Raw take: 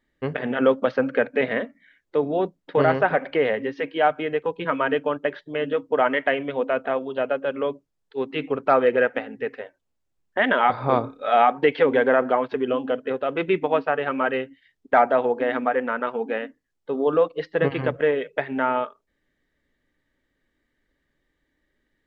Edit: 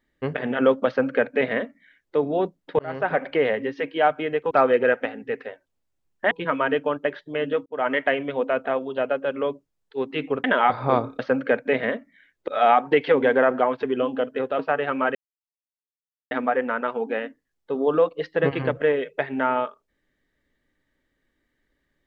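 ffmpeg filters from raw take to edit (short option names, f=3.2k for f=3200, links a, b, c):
-filter_complex "[0:a]asplit=11[a][b][c][d][e][f][g][h][i][j][k];[a]atrim=end=2.79,asetpts=PTS-STARTPTS,afade=t=out:st=2.786:d=0.004:c=hsin[l];[b]atrim=start=2.79:end=4.512,asetpts=PTS-STARTPTS,afade=t=in:d=0.42[m];[c]atrim=start=8.638:end=10.442[n];[d]atrim=start=4.508:end=5.86,asetpts=PTS-STARTPTS,afade=t=out:st=1.348:d=0.004:c=hsin[o];[e]atrim=start=5.86:end=8.642,asetpts=PTS-STARTPTS,afade=t=in:d=0.28[p];[f]atrim=start=10.438:end=11.192[q];[g]atrim=start=0.868:end=2.162[r];[h]atrim=start=11.188:end=13.302[s];[i]atrim=start=13.778:end=14.34,asetpts=PTS-STARTPTS,afade=t=out:st=0.558:d=0.004:c=hsin[t];[j]atrim=start=14.34:end=15.5,asetpts=PTS-STARTPTS,volume=0[u];[k]atrim=start=15.5,asetpts=PTS-STARTPTS,afade=t=in:d=0.004:c=hsin[v];[l][m]concat=n=2:v=0:a=1[w];[w][n]acrossfade=d=0.004:c1=hsin:c2=hsin[x];[o][p]concat=n=2:v=0:a=1[y];[x][y]acrossfade=d=0.004:c1=hsin:c2=hsin[z];[z][q]acrossfade=d=0.004:c1=hsin:c2=hsin[aa];[aa][r]acrossfade=d=0.004:c1=hsin:c2=hsin[ab];[ab][s]acrossfade=d=0.004:c1=hsin:c2=hsin[ac];[t][u][v]concat=n=3:v=0:a=1[ad];[ac][ad]acrossfade=d=0.004:c1=hsin:c2=hsin"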